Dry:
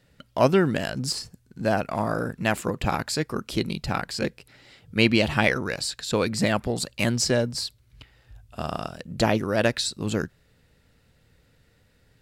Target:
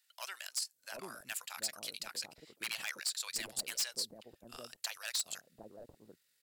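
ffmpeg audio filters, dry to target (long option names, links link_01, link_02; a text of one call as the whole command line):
ffmpeg -i in.wav -filter_complex "[0:a]highpass=frequency=63:width=0.5412,highpass=frequency=63:width=1.3066,aderivative,acontrast=68,atempo=1.9,aeval=exprs='0.112*(abs(mod(val(0)/0.112+3,4)-2)-1)':channel_layout=same,acrossover=split=690[link_01][link_02];[link_01]adelay=740[link_03];[link_03][link_02]amix=inputs=2:normalize=0,volume=-8dB" out.wav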